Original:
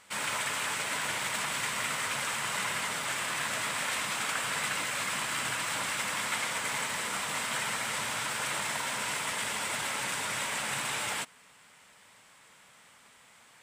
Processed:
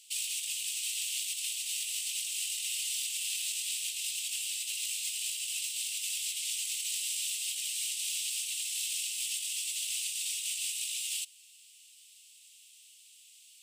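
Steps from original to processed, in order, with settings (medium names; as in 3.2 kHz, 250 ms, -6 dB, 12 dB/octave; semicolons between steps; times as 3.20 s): Chebyshev high-pass 2.7 kHz, order 5; treble shelf 5.4 kHz +7.5 dB; compressor with a negative ratio -35 dBFS, ratio -0.5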